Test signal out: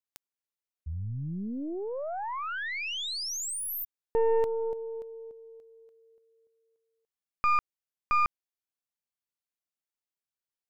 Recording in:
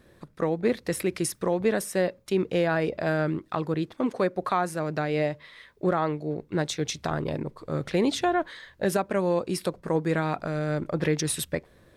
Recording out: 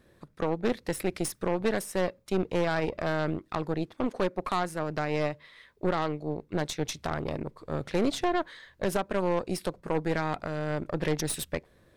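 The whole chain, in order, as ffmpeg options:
-af "aeval=exprs='0.237*(cos(1*acos(clip(val(0)/0.237,-1,1)))-cos(1*PI/2))+0.00299*(cos(5*acos(clip(val(0)/0.237,-1,1)))-cos(5*PI/2))+0.0473*(cos(6*acos(clip(val(0)/0.237,-1,1)))-cos(6*PI/2))+0.00335*(cos(7*acos(clip(val(0)/0.237,-1,1)))-cos(7*PI/2))+0.0168*(cos(8*acos(clip(val(0)/0.237,-1,1)))-cos(8*PI/2))':c=same,volume=0.631"

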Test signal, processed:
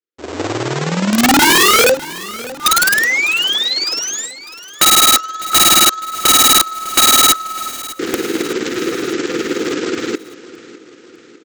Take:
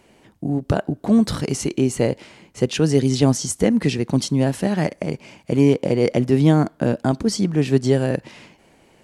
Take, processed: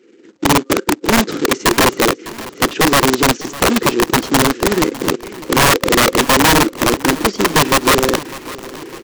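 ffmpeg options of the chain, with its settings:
-filter_complex "[0:a]acontrast=75,lowpass=f=1600:p=1,dynaudnorm=f=220:g=3:m=5.62,afftfilt=real='re*(1-between(b*sr/4096,530,1200))':imag='im*(1-between(b*sr/4096,530,1200))':win_size=4096:overlap=0.75,tremolo=f=19:d=0.53,aresample=16000,acrusher=bits=2:mode=log:mix=0:aa=0.000001,aresample=44100,highpass=f=340:t=q:w=3.4,aeval=exprs='(mod(1.5*val(0)+1,2)-1)/1.5':c=same,asplit=2[s0][s1];[s1]aecho=0:1:603|1206|1809|2412|3015:0.133|0.072|0.0389|0.021|0.0113[s2];[s0][s2]amix=inputs=2:normalize=0,volume=0.794"

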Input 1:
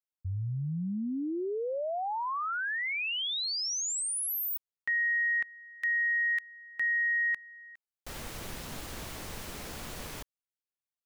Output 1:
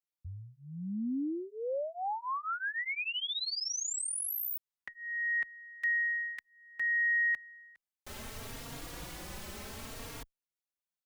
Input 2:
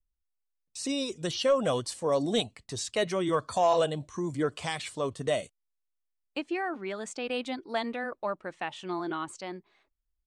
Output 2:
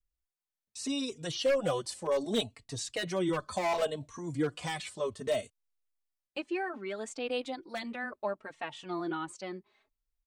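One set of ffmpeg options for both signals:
-filter_complex "[0:a]aeval=exprs='0.106*(abs(mod(val(0)/0.106+3,4)-2)-1)':c=same,asplit=2[s0][s1];[s1]adelay=3.7,afreqshift=0.67[s2];[s0][s2]amix=inputs=2:normalize=1"

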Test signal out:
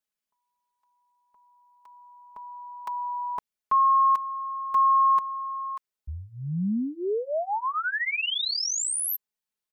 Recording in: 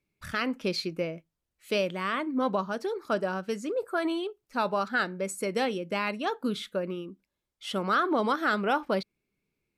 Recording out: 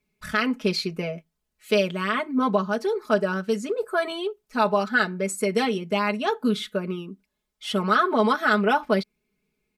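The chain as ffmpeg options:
-af "aecho=1:1:4.7:0.92,volume=1.33"

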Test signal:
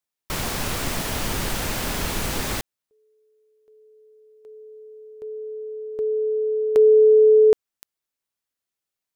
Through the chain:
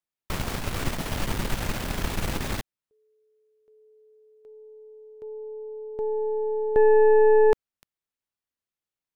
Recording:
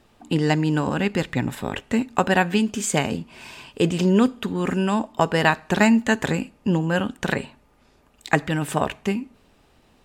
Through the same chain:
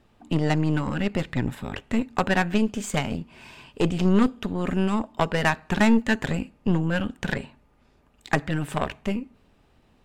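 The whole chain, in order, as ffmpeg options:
-af "bass=f=250:g=4,treble=f=4000:g=-5,aeval=exprs='0.841*(cos(1*acos(clip(val(0)/0.841,-1,1)))-cos(1*PI/2))+0.0841*(cos(8*acos(clip(val(0)/0.841,-1,1)))-cos(8*PI/2))':c=same,volume=0.596"

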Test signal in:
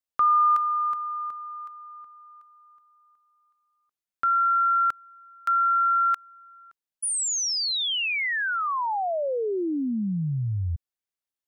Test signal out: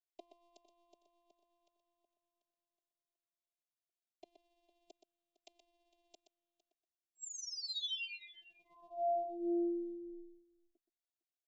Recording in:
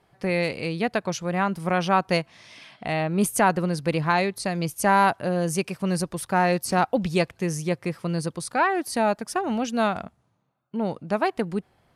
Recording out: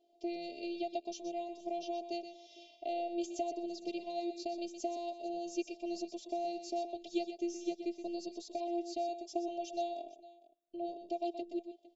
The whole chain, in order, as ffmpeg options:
-filter_complex "[0:a]afftfilt=real='re*between(b*sr/4096,160,7600)':imag='im*between(b*sr/4096,160,7600)':win_size=4096:overlap=0.75,acrossover=split=420 2000:gain=0.112 1 0.251[s0][s1][s2];[s0][s1][s2]amix=inputs=3:normalize=0,acrossover=split=840|3400[s3][s4][s5];[s3]acompressor=threshold=0.02:ratio=4[s6];[s4]acompressor=threshold=0.0141:ratio=4[s7];[s5]acompressor=threshold=0.00316:ratio=4[s8];[s6][s7][s8]amix=inputs=3:normalize=0,afftfilt=real='hypot(re,im)*cos(PI*b)':imag='0':win_size=512:overlap=0.75,asuperstop=centerf=1400:order=8:qfactor=0.58,asplit=2[s9][s10];[s10]aecho=0:1:123|456:0.335|0.106[s11];[s9][s11]amix=inputs=2:normalize=0,volume=1.68"

